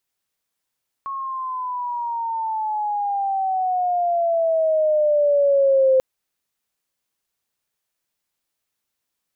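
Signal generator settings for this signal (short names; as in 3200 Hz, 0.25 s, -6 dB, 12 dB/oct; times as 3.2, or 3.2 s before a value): chirp logarithmic 1100 Hz -> 520 Hz -25.5 dBFS -> -12 dBFS 4.94 s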